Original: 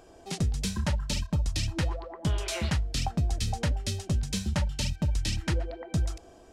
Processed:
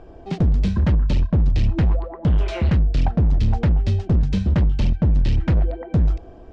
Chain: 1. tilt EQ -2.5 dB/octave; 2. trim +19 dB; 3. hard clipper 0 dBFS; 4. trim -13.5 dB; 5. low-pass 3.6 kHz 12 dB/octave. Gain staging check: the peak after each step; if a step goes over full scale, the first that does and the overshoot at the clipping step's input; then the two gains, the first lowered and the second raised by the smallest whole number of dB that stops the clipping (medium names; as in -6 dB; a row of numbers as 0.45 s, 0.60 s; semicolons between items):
-9.0 dBFS, +10.0 dBFS, 0.0 dBFS, -13.5 dBFS, -13.5 dBFS; step 2, 10.0 dB; step 2 +9 dB, step 4 -3.5 dB